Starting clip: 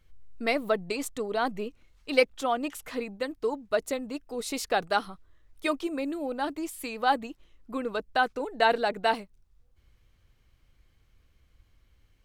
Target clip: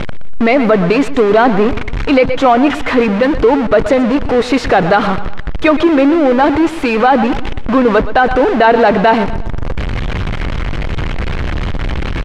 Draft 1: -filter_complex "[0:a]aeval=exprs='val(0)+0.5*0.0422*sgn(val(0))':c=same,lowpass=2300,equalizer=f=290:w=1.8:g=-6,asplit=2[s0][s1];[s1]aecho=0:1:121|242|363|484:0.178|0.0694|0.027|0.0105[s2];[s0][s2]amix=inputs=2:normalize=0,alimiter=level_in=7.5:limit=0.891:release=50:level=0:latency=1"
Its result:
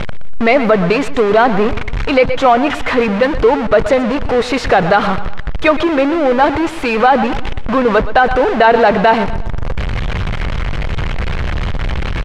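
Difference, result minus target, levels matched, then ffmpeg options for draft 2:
250 Hz band -3.0 dB
-filter_complex "[0:a]aeval=exprs='val(0)+0.5*0.0422*sgn(val(0))':c=same,lowpass=2300,asplit=2[s0][s1];[s1]aecho=0:1:121|242|363|484:0.178|0.0694|0.027|0.0105[s2];[s0][s2]amix=inputs=2:normalize=0,alimiter=level_in=7.5:limit=0.891:release=50:level=0:latency=1"

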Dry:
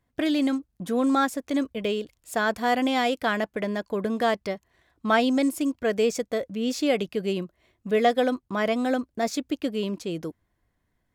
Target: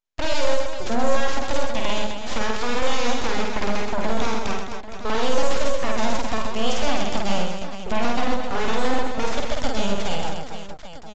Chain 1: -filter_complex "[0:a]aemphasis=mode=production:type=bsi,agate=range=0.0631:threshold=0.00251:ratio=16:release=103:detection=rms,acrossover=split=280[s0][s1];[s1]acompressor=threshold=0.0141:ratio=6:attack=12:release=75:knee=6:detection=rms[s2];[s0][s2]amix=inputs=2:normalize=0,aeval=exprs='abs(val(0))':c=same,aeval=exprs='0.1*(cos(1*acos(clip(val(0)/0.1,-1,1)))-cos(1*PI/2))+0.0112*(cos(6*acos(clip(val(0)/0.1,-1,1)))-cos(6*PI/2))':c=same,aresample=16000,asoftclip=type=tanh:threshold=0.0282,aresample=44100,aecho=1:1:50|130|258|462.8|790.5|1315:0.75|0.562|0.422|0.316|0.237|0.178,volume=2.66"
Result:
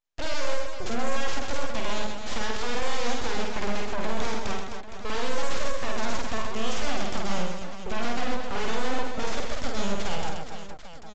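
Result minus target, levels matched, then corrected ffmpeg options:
saturation: distortion +17 dB
-filter_complex "[0:a]aemphasis=mode=production:type=bsi,agate=range=0.0631:threshold=0.00251:ratio=16:release=103:detection=rms,acrossover=split=280[s0][s1];[s1]acompressor=threshold=0.0141:ratio=6:attack=12:release=75:knee=6:detection=rms[s2];[s0][s2]amix=inputs=2:normalize=0,aeval=exprs='abs(val(0))':c=same,aeval=exprs='0.1*(cos(1*acos(clip(val(0)/0.1,-1,1)))-cos(1*PI/2))+0.0112*(cos(6*acos(clip(val(0)/0.1,-1,1)))-cos(6*PI/2))':c=same,aresample=16000,asoftclip=type=tanh:threshold=0.112,aresample=44100,aecho=1:1:50|130|258|462.8|790.5|1315:0.75|0.562|0.422|0.316|0.237|0.178,volume=2.66"

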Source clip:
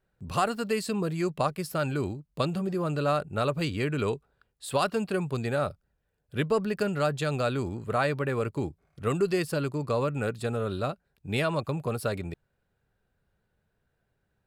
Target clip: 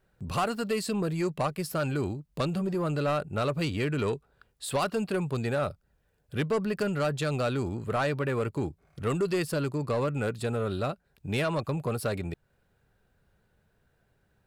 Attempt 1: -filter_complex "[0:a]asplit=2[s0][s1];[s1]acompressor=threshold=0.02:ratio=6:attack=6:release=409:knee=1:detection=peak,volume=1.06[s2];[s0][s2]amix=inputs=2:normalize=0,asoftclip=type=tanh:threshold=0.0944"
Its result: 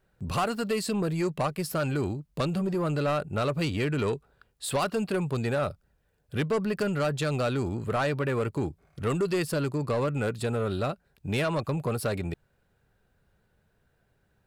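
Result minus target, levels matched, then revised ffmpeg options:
compression: peak gain reduction -8.5 dB
-filter_complex "[0:a]asplit=2[s0][s1];[s1]acompressor=threshold=0.00631:ratio=6:attack=6:release=409:knee=1:detection=peak,volume=1.06[s2];[s0][s2]amix=inputs=2:normalize=0,asoftclip=type=tanh:threshold=0.0944"

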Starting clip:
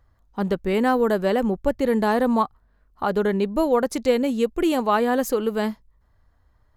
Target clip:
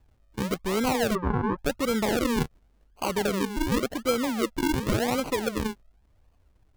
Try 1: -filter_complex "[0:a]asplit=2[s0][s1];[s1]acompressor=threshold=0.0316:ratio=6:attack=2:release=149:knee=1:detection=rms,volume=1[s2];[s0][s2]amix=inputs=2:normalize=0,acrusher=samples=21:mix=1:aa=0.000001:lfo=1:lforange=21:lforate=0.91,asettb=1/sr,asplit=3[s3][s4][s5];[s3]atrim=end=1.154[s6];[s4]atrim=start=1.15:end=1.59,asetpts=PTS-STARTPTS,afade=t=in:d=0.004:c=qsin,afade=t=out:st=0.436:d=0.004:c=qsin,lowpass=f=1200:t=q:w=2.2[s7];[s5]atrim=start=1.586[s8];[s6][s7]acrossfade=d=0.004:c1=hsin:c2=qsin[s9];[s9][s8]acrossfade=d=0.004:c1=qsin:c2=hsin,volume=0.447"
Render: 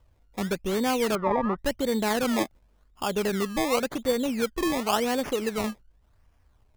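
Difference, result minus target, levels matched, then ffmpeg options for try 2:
decimation with a swept rate: distortion -10 dB
-filter_complex "[0:a]asplit=2[s0][s1];[s1]acompressor=threshold=0.0316:ratio=6:attack=2:release=149:knee=1:detection=rms,volume=1[s2];[s0][s2]amix=inputs=2:normalize=0,acrusher=samples=48:mix=1:aa=0.000001:lfo=1:lforange=48:lforate=0.91,asettb=1/sr,asplit=3[s3][s4][s5];[s3]atrim=end=1.154[s6];[s4]atrim=start=1.15:end=1.59,asetpts=PTS-STARTPTS,afade=t=in:d=0.004:c=qsin,afade=t=out:st=0.436:d=0.004:c=qsin,lowpass=f=1200:t=q:w=2.2[s7];[s5]atrim=start=1.586[s8];[s6][s7]acrossfade=d=0.004:c1=hsin:c2=qsin[s9];[s9][s8]acrossfade=d=0.004:c1=qsin:c2=hsin,volume=0.447"

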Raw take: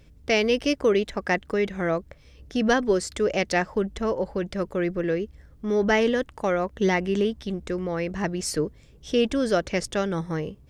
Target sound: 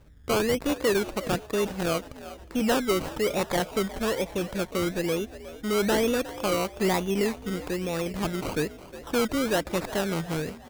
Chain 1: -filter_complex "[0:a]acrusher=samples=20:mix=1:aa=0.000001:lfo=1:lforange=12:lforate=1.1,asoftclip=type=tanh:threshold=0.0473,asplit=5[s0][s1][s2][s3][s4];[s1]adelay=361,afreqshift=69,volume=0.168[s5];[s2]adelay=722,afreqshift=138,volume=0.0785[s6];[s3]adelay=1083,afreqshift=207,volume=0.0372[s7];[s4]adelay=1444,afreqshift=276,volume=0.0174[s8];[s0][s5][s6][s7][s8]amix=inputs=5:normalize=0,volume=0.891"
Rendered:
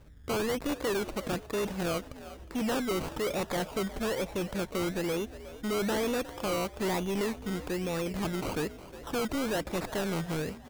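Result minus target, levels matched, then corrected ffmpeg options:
saturation: distortion +10 dB
-filter_complex "[0:a]acrusher=samples=20:mix=1:aa=0.000001:lfo=1:lforange=12:lforate=1.1,asoftclip=type=tanh:threshold=0.158,asplit=5[s0][s1][s2][s3][s4];[s1]adelay=361,afreqshift=69,volume=0.168[s5];[s2]adelay=722,afreqshift=138,volume=0.0785[s6];[s3]adelay=1083,afreqshift=207,volume=0.0372[s7];[s4]adelay=1444,afreqshift=276,volume=0.0174[s8];[s0][s5][s6][s7][s8]amix=inputs=5:normalize=0,volume=0.891"

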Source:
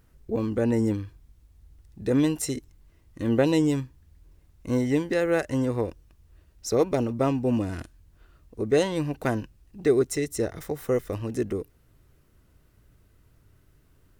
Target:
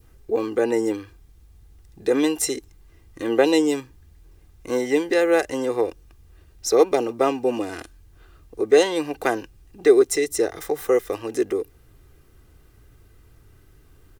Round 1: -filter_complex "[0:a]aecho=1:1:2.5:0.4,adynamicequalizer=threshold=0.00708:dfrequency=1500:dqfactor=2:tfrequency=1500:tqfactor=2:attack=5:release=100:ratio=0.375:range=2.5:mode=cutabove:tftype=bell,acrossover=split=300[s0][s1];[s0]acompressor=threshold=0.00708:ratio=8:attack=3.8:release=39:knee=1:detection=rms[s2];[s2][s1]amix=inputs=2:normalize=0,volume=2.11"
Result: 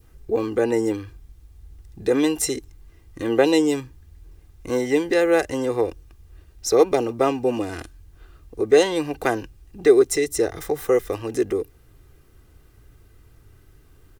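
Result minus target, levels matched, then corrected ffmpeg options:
compression: peak gain reduction -9 dB
-filter_complex "[0:a]aecho=1:1:2.5:0.4,adynamicequalizer=threshold=0.00708:dfrequency=1500:dqfactor=2:tfrequency=1500:tqfactor=2:attack=5:release=100:ratio=0.375:range=2.5:mode=cutabove:tftype=bell,acrossover=split=300[s0][s1];[s0]acompressor=threshold=0.00211:ratio=8:attack=3.8:release=39:knee=1:detection=rms[s2];[s2][s1]amix=inputs=2:normalize=0,volume=2.11"

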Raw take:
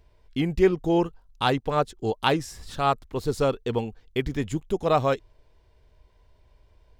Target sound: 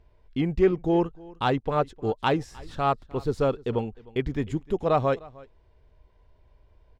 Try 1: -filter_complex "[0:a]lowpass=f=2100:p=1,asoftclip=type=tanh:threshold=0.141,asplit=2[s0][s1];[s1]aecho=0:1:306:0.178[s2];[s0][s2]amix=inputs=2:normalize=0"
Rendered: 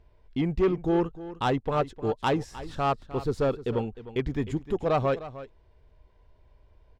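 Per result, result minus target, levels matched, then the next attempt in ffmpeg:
saturation: distortion +13 dB; echo-to-direct +7.5 dB
-filter_complex "[0:a]lowpass=f=2100:p=1,asoftclip=type=tanh:threshold=0.398,asplit=2[s0][s1];[s1]aecho=0:1:306:0.178[s2];[s0][s2]amix=inputs=2:normalize=0"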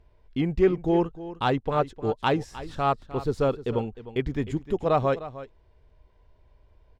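echo-to-direct +7.5 dB
-filter_complex "[0:a]lowpass=f=2100:p=1,asoftclip=type=tanh:threshold=0.398,asplit=2[s0][s1];[s1]aecho=0:1:306:0.075[s2];[s0][s2]amix=inputs=2:normalize=0"

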